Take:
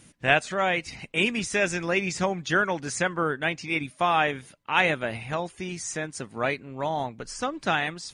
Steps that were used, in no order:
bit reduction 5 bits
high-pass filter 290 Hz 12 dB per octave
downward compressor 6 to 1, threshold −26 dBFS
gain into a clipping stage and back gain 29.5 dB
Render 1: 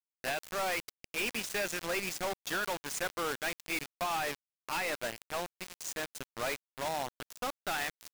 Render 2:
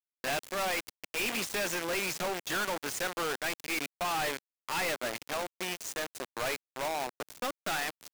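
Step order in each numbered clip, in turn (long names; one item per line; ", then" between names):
high-pass filter, then bit reduction, then downward compressor, then gain into a clipping stage and back
bit reduction, then high-pass filter, then gain into a clipping stage and back, then downward compressor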